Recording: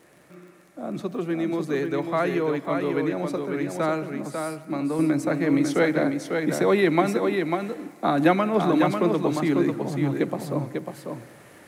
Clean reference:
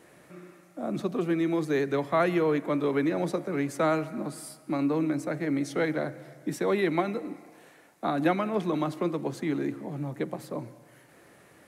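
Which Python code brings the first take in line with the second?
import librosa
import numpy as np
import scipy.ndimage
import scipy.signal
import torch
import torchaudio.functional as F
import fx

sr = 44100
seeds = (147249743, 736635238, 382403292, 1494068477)

y = fx.fix_declick_ar(x, sr, threshold=6.5)
y = fx.fix_echo_inverse(y, sr, delay_ms=546, level_db=-5.0)
y = fx.fix_level(y, sr, at_s=4.99, step_db=-6.0)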